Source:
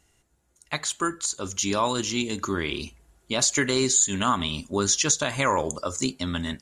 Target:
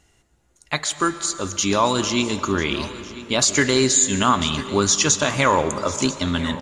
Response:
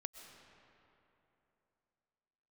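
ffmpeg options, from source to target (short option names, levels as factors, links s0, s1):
-filter_complex "[0:a]aecho=1:1:996:0.141,asplit=2[s0][s1];[1:a]atrim=start_sample=2205,lowpass=8500[s2];[s1][s2]afir=irnorm=-1:irlink=0,volume=1.5[s3];[s0][s3]amix=inputs=2:normalize=0"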